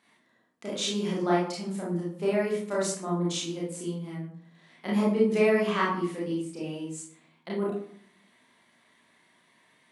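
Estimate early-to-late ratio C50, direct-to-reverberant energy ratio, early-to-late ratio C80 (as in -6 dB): 1.0 dB, -6.5 dB, 7.5 dB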